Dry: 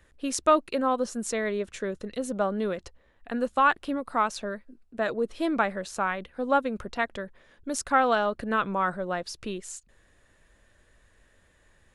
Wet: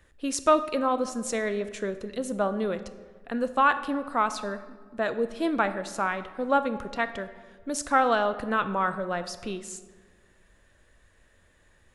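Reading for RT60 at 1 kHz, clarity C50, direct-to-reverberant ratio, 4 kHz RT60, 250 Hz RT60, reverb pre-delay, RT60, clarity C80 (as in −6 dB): 1.4 s, 13.0 dB, 11.0 dB, 0.90 s, 1.8 s, 16 ms, 1.5 s, 14.5 dB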